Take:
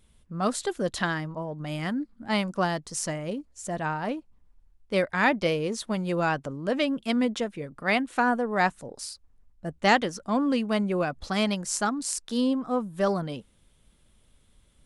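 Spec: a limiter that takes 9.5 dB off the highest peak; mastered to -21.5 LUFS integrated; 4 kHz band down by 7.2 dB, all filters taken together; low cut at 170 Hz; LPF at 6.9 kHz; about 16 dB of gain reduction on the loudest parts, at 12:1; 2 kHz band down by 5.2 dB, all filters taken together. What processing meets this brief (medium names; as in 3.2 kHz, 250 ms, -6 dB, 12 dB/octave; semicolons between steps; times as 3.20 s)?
high-pass 170 Hz; low-pass 6.9 kHz; peaking EQ 2 kHz -5 dB; peaking EQ 4 kHz -7.5 dB; compression 12:1, threshold -34 dBFS; trim +19.5 dB; peak limiter -11.5 dBFS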